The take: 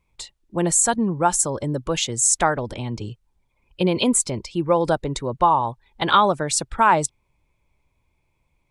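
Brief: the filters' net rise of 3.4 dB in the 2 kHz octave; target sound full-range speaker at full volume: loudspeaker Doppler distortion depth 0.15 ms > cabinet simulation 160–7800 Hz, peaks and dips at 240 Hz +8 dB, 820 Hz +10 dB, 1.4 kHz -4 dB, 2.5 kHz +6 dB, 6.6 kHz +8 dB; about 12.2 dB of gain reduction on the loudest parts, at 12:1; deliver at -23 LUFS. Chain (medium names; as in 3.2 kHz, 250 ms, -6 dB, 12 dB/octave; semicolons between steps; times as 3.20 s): peaking EQ 2 kHz +4.5 dB; compression 12:1, threshold -22 dBFS; loudspeaker Doppler distortion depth 0.15 ms; cabinet simulation 160–7800 Hz, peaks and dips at 240 Hz +8 dB, 820 Hz +10 dB, 1.4 kHz -4 dB, 2.5 kHz +6 dB, 6.6 kHz +8 dB; trim +2 dB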